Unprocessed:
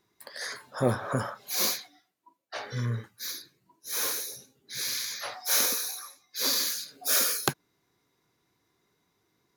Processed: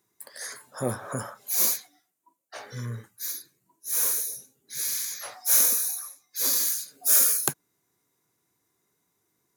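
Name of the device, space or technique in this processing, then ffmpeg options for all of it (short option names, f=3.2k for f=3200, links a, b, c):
budget condenser microphone: -af "highpass=74,highshelf=f=6k:t=q:w=1.5:g=9.5,volume=-3.5dB"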